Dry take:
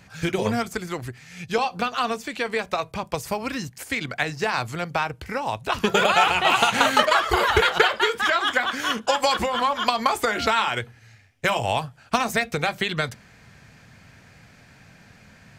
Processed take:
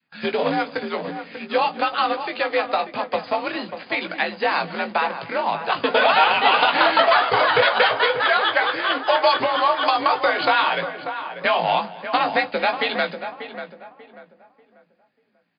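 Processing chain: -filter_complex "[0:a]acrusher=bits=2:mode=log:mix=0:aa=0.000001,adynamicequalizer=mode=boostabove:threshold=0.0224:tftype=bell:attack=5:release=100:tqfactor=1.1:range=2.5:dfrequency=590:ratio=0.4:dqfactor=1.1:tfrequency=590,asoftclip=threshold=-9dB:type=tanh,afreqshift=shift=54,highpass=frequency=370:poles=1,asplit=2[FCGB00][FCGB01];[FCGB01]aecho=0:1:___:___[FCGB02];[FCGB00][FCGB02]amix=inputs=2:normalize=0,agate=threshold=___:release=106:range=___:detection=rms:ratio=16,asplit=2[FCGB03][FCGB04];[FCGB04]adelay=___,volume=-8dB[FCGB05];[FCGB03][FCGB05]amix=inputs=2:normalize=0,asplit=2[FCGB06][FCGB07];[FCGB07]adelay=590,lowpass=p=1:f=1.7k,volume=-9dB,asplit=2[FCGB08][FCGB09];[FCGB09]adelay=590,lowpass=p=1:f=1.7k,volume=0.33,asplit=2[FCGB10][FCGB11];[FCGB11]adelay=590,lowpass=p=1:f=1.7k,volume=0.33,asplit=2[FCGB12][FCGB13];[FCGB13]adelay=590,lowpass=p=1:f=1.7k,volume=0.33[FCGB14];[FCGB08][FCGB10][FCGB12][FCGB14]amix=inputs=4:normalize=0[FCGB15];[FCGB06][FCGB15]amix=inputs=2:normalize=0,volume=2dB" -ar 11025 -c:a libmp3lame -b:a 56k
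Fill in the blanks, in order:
225, 0.106, -46dB, -24dB, 18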